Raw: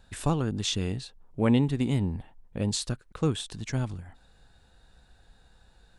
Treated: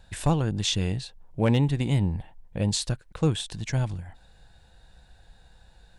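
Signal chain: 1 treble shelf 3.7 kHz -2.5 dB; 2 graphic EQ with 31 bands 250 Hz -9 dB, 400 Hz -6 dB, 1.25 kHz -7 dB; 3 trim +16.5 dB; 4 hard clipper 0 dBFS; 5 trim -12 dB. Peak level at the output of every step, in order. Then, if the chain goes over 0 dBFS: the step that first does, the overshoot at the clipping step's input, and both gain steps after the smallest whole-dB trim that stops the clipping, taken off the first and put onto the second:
-11.0 dBFS, -13.0 dBFS, +3.5 dBFS, 0.0 dBFS, -12.0 dBFS; step 3, 3.5 dB; step 3 +12.5 dB, step 5 -8 dB

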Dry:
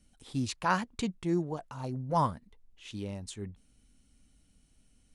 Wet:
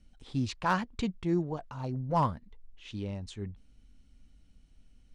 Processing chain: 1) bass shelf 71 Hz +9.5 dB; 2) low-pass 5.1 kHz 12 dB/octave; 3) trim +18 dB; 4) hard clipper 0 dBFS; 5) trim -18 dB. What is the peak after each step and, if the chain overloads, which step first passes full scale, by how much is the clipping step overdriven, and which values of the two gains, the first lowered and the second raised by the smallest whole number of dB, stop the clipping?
-14.0 dBFS, -14.0 dBFS, +4.0 dBFS, 0.0 dBFS, -18.0 dBFS; step 3, 4.0 dB; step 3 +14 dB, step 5 -14 dB

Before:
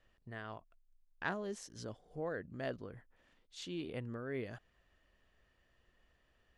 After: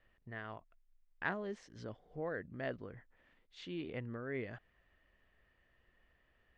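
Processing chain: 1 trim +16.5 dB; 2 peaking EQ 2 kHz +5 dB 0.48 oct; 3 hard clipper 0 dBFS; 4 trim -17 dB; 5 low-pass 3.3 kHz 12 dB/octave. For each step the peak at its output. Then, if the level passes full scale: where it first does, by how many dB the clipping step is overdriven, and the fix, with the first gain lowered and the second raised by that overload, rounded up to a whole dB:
-6.0 dBFS, -4.0 dBFS, -4.0 dBFS, -21.0 dBFS, -21.5 dBFS; nothing clips

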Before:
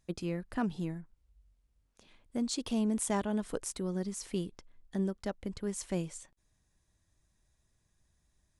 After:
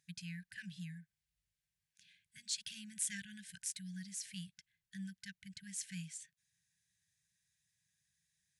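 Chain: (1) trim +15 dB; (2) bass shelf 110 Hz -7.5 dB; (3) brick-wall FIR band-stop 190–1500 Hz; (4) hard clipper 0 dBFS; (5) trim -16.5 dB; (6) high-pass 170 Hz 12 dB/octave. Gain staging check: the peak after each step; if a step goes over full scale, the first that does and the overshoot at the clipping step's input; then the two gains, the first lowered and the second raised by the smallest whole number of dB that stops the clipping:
-3.5 dBFS, -3.5 dBFS, -3.5 dBFS, -3.5 dBFS, -20.0 dBFS, -20.0 dBFS; nothing clips

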